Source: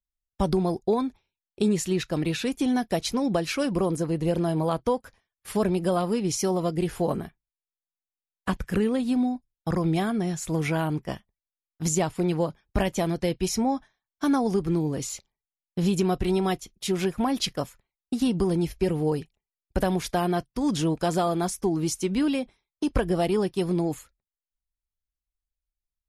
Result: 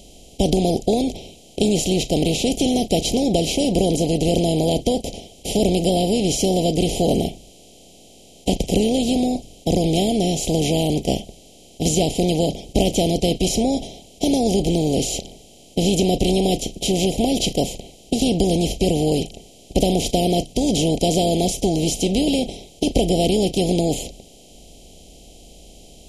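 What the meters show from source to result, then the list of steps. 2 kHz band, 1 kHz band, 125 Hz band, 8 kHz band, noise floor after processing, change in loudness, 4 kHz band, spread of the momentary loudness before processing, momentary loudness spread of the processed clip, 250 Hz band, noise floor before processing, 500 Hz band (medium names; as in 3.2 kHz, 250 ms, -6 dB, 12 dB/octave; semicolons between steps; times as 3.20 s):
+1.0 dB, +3.5 dB, +6.0 dB, +9.0 dB, -47 dBFS, +6.5 dB, +12.0 dB, 7 LU, 7 LU, +6.0 dB, under -85 dBFS, +7.0 dB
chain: spectral levelling over time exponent 0.4; elliptic band-stop 710–2700 Hz, stop band 70 dB; small resonant body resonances 1.3/2/3.1 kHz, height 9 dB; trim +1.5 dB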